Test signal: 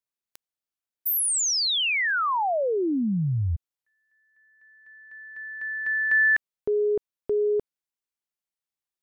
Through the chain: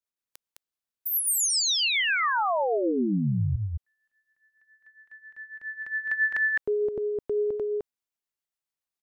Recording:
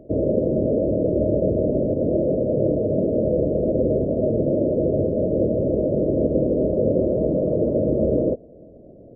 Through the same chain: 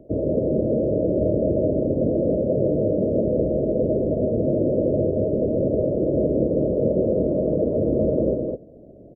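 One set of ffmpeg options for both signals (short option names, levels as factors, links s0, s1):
-filter_complex "[0:a]acrossover=split=500[s0][s1];[s0]aeval=exprs='val(0)*(1-0.5/2+0.5/2*cos(2*PI*7.3*n/s))':c=same[s2];[s1]aeval=exprs='val(0)*(1-0.5/2-0.5/2*cos(2*PI*7.3*n/s))':c=same[s3];[s2][s3]amix=inputs=2:normalize=0,asplit=2[s4][s5];[s5]aecho=0:1:210:0.708[s6];[s4][s6]amix=inputs=2:normalize=0"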